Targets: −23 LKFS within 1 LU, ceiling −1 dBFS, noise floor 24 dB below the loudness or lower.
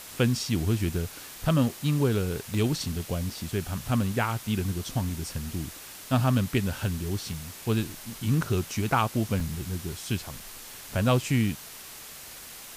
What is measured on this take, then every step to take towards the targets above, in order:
number of dropouts 6; longest dropout 2.8 ms; background noise floor −44 dBFS; target noise floor −53 dBFS; integrated loudness −28.5 LKFS; sample peak −9.5 dBFS; target loudness −23.0 LKFS
→ repair the gap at 0:01.69/0:02.54/0:03.30/0:07.33/0:09.40/0:10.40, 2.8 ms
noise reduction from a noise print 9 dB
level +5.5 dB

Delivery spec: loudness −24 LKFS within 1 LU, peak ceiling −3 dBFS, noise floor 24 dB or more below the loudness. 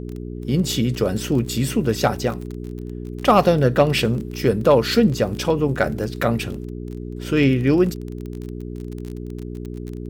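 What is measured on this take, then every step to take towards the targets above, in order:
crackle rate 26 per second; mains hum 60 Hz; hum harmonics up to 420 Hz; level of the hum −29 dBFS; integrated loudness −20.0 LKFS; sample peak −4.5 dBFS; target loudness −24.0 LKFS
→ click removal
hum removal 60 Hz, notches 7
level −4 dB

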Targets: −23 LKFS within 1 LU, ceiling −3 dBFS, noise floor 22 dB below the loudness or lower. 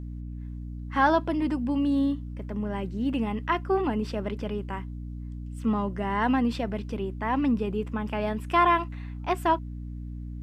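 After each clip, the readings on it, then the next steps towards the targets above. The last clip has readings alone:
mains hum 60 Hz; hum harmonics up to 300 Hz; level of the hum −34 dBFS; integrated loudness −27.5 LKFS; sample peak −10.5 dBFS; target loudness −23.0 LKFS
→ hum removal 60 Hz, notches 5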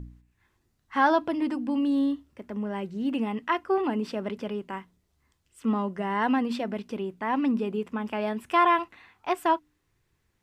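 mains hum none found; integrated loudness −27.5 LKFS; sample peak −11.0 dBFS; target loudness −23.0 LKFS
→ level +4.5 dB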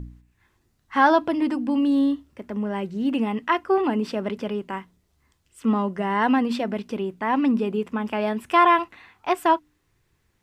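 integrated loudness −23.0 LKFS; sample peak −6.5 dBFS; background noise floor −69 dBFS

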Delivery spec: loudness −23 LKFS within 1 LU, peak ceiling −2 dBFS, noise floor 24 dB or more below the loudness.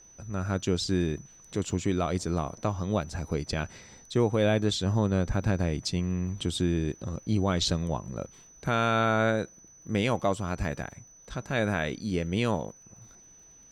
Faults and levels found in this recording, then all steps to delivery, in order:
crackle rate 34 per second; interfering tone 6,000 Hz; level of the tone −52 dBFS; integrated loudness −29.0 LKFS; sample peak −13.5 dBFS; target loudness −23.0 LKFS
→ click removal
notch filter 6,000 Hz, Q 30
level +6 dB

